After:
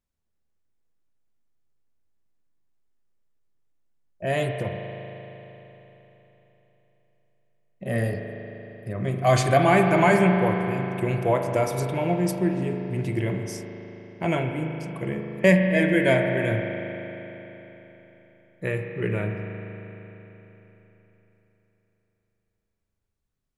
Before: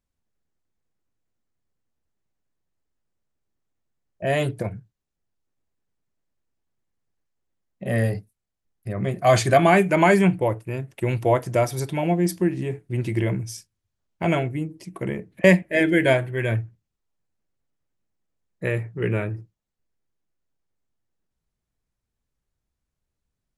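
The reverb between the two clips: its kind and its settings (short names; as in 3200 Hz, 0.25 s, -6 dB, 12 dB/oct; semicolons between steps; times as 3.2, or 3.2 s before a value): spring tank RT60 3.8 s, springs 38 ms, chirp 45 ms, DRR 3.5 dB; gain -3 dB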